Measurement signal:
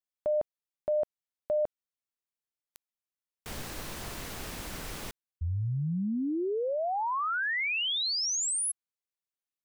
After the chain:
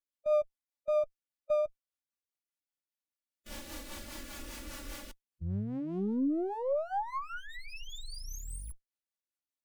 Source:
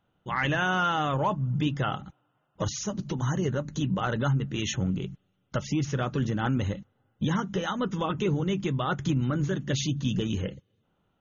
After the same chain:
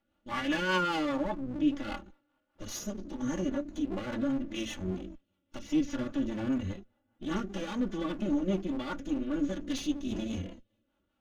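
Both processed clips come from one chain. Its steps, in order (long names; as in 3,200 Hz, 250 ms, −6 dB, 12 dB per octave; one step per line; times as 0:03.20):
lower of the sound and its delayed copy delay 3.5 ms
harmonic and percussive parts rebalanced percussive −16 dB
rotating-speaker cabinet horn 5 Hz
level +2.5 dB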